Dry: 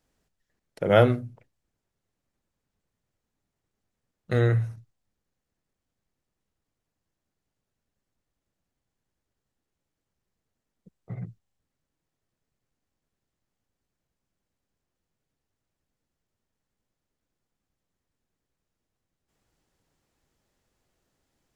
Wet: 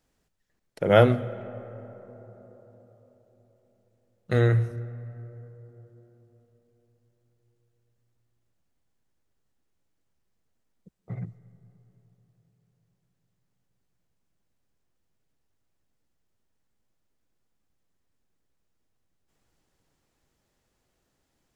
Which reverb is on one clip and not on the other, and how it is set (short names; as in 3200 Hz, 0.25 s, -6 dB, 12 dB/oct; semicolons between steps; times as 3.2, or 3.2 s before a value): digital reverb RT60 4.4 s, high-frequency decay 0.3×, pre-delay 85 ms, DRR 17.5 dB; gain +1 dB